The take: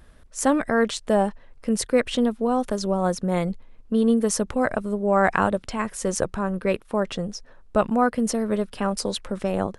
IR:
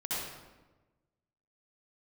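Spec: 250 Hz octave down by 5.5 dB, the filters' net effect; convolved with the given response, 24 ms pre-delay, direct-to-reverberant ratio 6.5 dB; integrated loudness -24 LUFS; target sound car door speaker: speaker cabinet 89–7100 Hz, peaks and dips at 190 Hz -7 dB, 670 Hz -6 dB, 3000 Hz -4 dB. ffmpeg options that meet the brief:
-filter_complex "[0:a]equalizer=f=250:t=o:g=-3,asplit=2[a][b];[1:a]atrim=start_sample=2205,adelay=24[c];[b][c]afir=irnorm=-1:irlink=0,volume=-12dB[d];[a][d]amix=inputs=2:normalize=0,highpass=89,equalizer=f=190:t=q:w=4:g=-7,equalizer=f=670:t=q:w=4:g=-6,equalizer=f=3k:t=q:w=4:g=-4,lowpass=f=7.1k:w=0.5412,lowpass=f=7.1k:w=1.3066,volume=2dB"

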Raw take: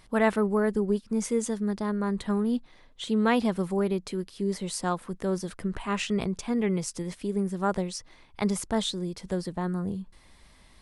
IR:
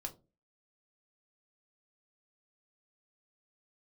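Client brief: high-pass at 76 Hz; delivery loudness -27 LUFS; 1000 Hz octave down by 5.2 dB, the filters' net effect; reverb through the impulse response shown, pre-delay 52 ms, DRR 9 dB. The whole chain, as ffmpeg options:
-filter_complex "[0:a]highpass=76,equalizer=f=1k:t=o:g=-7,asplit=2[a][b];[1:a]atrim=start_sample=2205,adelay=52[c];[b][c]afir=irnorm=-1:irlink=0,volume=-7dB[d];[a][d]amix=inputs=2:normalize=0,volume=2.5dB"

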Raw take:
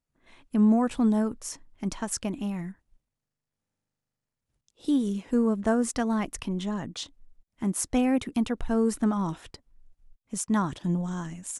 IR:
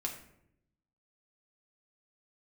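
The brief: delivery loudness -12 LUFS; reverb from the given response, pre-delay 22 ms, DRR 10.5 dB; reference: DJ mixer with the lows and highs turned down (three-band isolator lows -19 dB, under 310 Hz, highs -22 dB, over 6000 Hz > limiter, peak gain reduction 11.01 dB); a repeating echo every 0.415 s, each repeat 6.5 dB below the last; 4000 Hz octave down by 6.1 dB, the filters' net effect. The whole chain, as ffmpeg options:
-filter_complex "[0:a]equalizer=f=4k:t=o:g=-6.5,aecho=1:1:415|830|1245|1660|2075|2490:0.473|0.222|0.105|0.0491|0.0231|0.0109,asplit=2[a][b];[1:a]atrim=start_sample=2205,adelay=22[c];[b][c]afir=irnorm=-1:irlink=0,volume=-11.5dB[d];[a][d]amix=inputs=2:normalize=0,acrossover=split=310 6000:gain=0.112 1 0.0794[e][f][g];[e][f][g]amix=inputs=3:normalize=0,volume=25dB,alimiter=limit=-1dB:level=0:latency=1"

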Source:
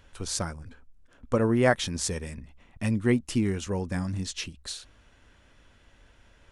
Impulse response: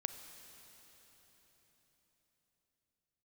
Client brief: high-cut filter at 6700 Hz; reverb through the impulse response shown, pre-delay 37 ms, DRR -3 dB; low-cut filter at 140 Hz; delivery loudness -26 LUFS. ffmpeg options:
-filter_complex "[0:a]highpass=140,lowpass=6.7k,asplit=2[a][b];[1:a]atrim=start_sample=2205,adelay=37[c];[b][c]afir=irnorm=-1:irlink=0,volume=3.5dB[d];[a][d]amix=inputs=2:normalize=0,volume=-1dB"

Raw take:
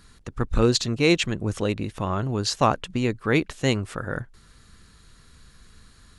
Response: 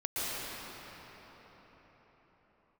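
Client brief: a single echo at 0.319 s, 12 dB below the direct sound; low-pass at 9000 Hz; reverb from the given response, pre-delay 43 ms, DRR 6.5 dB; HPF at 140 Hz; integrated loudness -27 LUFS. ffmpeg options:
-filter_complex "[0:a]highpass=140,lowpass=9k,aecho=1:1:319:0.251,asplit=2[a][b];[1:a]atrim=start_sample=2205,adelay=43[c];[b][c]afir=irnorm=-1:irlink=0,volume=-14.5dB[d];[a][d]amix=inputs=2:normalize=0,volume=-3dB"

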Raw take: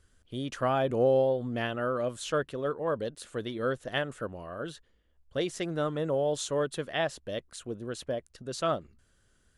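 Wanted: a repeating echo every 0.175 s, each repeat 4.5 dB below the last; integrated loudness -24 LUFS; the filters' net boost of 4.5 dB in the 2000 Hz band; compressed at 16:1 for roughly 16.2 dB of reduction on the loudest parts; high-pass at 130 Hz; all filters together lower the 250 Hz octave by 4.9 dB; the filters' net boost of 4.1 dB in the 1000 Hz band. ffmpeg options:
-af "highpass=130,equalizer=f=250:t=o:g=-6.5,equalizer=f=1k:t=o:g=5,equalizer=f=2k:t=o:g=4,acompressor=threshold=-36dB:ratio=16,aecho=1:1:175|350|525|700|875|1050|1225|1400|1575:0.596|0.357|0.214|0.129|0.0772|0.0463|0.0278|0.0167|0.01,volume=16dB"

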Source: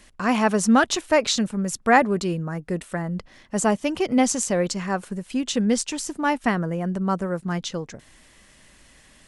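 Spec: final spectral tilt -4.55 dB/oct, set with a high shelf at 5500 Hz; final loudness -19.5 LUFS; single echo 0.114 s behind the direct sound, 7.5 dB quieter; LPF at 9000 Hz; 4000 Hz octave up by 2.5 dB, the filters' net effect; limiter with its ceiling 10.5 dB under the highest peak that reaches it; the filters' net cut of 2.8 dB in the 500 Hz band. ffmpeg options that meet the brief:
-af "lowpass=9k,equalizer=f=500:t=o:g=-3.5,equalizer=f=4k:t=o:g=6,highshelf=f=5.5k:g=-7,alimiter=limit=-15.5dB:level=0:latency=1,aecho=1:1:114:0.422,volume=6.5dB"

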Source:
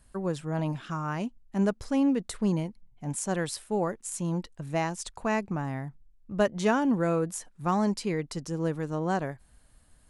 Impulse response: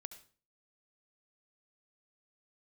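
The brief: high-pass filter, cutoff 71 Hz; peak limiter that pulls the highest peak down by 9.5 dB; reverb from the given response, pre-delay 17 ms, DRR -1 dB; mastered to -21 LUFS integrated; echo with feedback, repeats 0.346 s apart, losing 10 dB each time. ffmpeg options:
-filter_complex "[0:a]highpass=71,alimiter=limit=-22dB:level=0:latency=1,aecho=1:1:346|692|1038|1384:0.316|0.101|0.0324|0.0104,asplit=2[a][b];[1:a]atrim=start_sample=2205,adelay=17[c];[b][c]afir=irnorm=-1:irlink=0,volume=6dB[d];[a][d]amix=inputs=2:normalize=0,volume=8dB"

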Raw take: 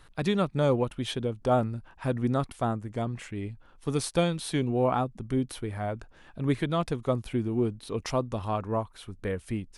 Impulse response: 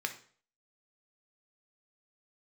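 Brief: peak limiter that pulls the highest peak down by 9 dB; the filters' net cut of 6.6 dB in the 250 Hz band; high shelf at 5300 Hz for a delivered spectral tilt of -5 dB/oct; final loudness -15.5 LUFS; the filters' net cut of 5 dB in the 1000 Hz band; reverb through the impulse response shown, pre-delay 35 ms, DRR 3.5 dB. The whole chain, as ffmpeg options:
-filter_complex "[0:a]equalizer=f=250:t=o:g=-8.5,equalizer=f=1k:t=o:g=-7,highshelf=f=5.3k:g=8.5,alimiter=limit=-23.5dB:level=0:latency=1,asplit=2[a][b];[1:a]atrim=start_sample=2205,adelay=35[c];[b][c]afir=irnorm=-1:irlink=0,volume=-7dB[d];[a][d]amix=inputs=2:normalize=0,volume=18.5dB"

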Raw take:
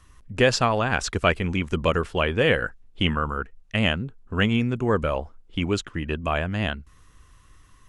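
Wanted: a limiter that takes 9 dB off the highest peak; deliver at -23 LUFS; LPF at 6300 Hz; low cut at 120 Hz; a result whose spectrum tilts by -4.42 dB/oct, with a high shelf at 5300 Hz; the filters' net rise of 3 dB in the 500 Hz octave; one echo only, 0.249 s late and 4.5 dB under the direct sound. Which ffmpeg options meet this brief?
-af "highpass=120,lowpass=6.3k,equalizer=f=500:t=o:g=3.5,highshelf=f=5.3k:g=-6.5,alimiter=limit=-12.5dB:level=0:latency=1,aecho=1:1:249:0.596,volume=2.5dB"

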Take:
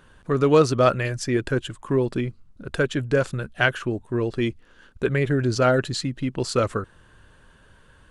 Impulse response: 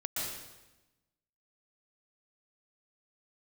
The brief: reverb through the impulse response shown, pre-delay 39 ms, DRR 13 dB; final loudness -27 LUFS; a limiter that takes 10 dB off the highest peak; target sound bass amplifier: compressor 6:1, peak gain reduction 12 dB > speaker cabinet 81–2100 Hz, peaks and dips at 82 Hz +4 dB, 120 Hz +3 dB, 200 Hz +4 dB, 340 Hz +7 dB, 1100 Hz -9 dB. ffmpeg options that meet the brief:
-filter_complex "[0:a]alimiter=limit=-13.5dB:level=0:latency=1,asplit=2[a][b];[1:a]atrim=start_sample=2205,adelay=39[c];[b][c]afir=irnorm=-1:irlink=0,volume=-17dB[d];[a][d]amix=inputs=2:normalize=0,acompressor=threshold=-30dB:ratio=6,highpass=f=81:w=0.5412,highpass=f=81:w=1.3066,equalizer=f=82:t=q:w=4:g=4,equalizer=f=120:t=q:w=4:g=3,equalizer=f=200:t=q:w=4:g=4,equalizer=f=340:t=q:w=4:g=7,equalizer=f=1.1k:t=q:w=4:g=-9,lowpass=f=2.1k:w=0.5412,lowpass=f=2.1k:w=1.3066,volume=5.5dB"

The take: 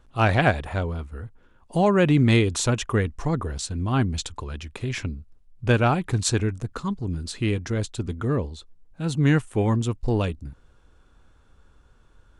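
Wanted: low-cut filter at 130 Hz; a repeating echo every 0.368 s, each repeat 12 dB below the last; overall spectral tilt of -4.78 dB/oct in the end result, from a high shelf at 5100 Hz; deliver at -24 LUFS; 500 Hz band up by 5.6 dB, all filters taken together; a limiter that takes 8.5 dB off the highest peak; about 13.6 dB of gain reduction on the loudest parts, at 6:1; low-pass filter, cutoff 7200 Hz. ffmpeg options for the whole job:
-af "highpass=130,lowpass=7.2k,equalizer=f=500:t=o:g=7,highshelf=f=5.1k:g=7.5,acompressor=threshold=-26dB:ratio=6,alimiter=limit=-21dB:level=0:latency=1,aecho=1:1:368|736|1104:0.251|0.0628|0.0157,volume=9.5dB"

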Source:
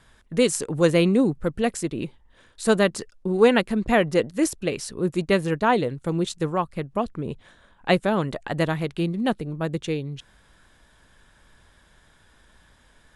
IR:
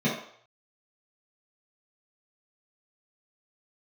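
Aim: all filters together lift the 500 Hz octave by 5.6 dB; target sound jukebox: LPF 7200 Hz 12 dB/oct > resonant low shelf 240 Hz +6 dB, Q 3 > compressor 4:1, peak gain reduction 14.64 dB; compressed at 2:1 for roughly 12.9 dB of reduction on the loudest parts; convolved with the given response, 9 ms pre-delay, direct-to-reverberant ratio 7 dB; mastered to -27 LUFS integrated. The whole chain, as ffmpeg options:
-filter_complex "[0:a]equalizer=f=500:t=o:g=8.5,acompressor=threshold=-28dB:ratio=2,asplit=2[a][b];[1:a]atrim=start_sample=2205,adelay=9[c];[b][c]afir=irnorm=-1:irlink=0,volume=-19dB[d];[a][d]amix=inputs=2:normalize=0,lowpass=7.2k,lowshelf=f=240:t=q:w=3:g=6,acompressor=threshold=-26dB:ratio=4,volume=2.5dB"

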